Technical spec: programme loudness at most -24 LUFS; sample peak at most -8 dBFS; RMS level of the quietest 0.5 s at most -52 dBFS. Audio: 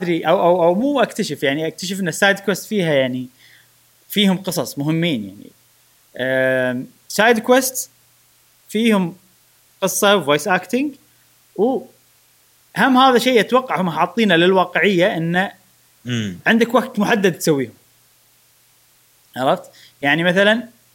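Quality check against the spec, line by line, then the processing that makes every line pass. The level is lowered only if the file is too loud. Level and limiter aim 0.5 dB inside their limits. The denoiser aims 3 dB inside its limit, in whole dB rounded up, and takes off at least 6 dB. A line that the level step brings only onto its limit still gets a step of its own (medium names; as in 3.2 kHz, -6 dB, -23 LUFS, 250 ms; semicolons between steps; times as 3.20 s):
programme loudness -17.5 LUFS: fail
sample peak -2.5 dBFS: fail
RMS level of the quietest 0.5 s -55 dBFS: pass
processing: trim -7 dB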